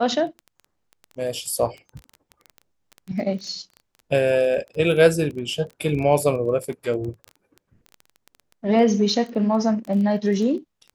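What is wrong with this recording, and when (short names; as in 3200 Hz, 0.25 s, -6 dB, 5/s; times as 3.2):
crackle 14/s -30 dBFS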